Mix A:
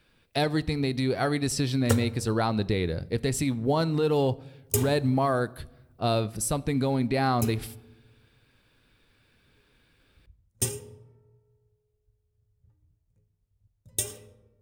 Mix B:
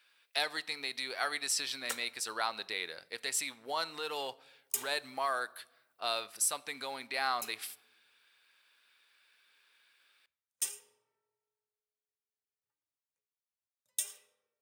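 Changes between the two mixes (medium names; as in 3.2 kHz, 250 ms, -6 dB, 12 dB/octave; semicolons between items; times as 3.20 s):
background -5.5 dB; master: add high-pass 1.2 kHz 12 dB/octave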